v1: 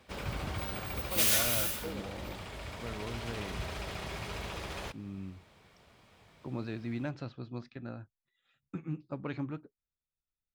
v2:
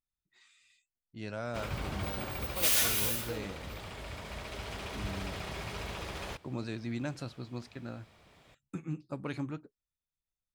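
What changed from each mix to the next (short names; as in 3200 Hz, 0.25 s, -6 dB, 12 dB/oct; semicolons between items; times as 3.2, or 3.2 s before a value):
speech: remove Gaussian blur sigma 1.9 samples; background: entry +1.45 s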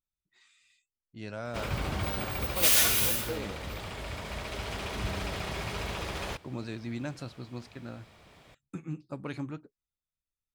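background +4.5 dB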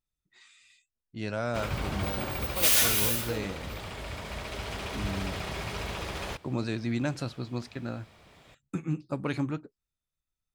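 speech +6.5 dB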